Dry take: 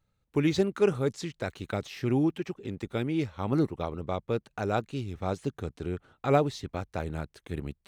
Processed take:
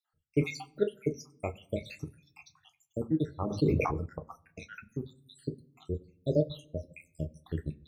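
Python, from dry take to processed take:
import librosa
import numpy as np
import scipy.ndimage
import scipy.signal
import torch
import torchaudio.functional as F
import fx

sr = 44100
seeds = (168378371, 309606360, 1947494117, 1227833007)

y = fx.spec_dropout(x, sr, seeds[0], share_pct=84)
y = fx.doubler(y, sr, ms=13.0, db=-10.5)
y = fx.room_shoebox(y, sr, seeds[1], volume_m3=100.0, walls='mixed', distance_m=0.47)
y = fx.dereverb_blind(y, sr, rt60_s=0.78)
y = fx.sustainer(y, sr, db_per_s=30.0, at=(3.46, 4.06))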